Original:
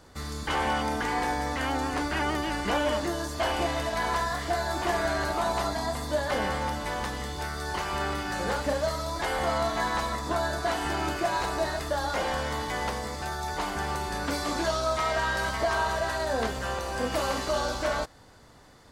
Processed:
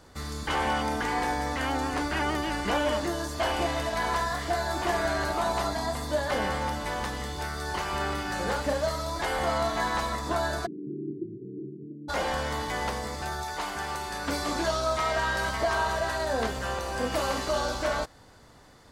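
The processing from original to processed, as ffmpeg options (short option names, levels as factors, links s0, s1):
-filter_complex "[0:a]asplit=3[s0][s1][s2];[s0]afade=t=out:st=10.65:d=0.02[s3];[s1]asuperpass=centerf=210:order=20:qfactor=0.69,afade=t=in:st=10.65:d=0.02,afade=t=out:st=12.08:d=0.02[s4];[s2]afade=t=in:st=12.08:d=0.02[s5];[s3][s4][s5]amix=inputs=3:normalize=0,asettb=1/sr,asplit=3[s6][s7][s8];[s6]atrim=end=13.434[s9];[s7]atrim=start=13.43:end=14.27,asetpts=PTS-STARTPTS,afade=t=in:d=0.004:c=qsin,afade=t=out:st=0.836:d=0.004:c=qsin,lowshelf=f=480:g=-7.5[s10];[s8]atrim=start=14.266[s11];[s9][s10]acrossfade=d=0.004:c1=hsin:c2=qsin[s12];[s12][s11]acrossfade=d=0.004:c1=qsin:c2=hsin"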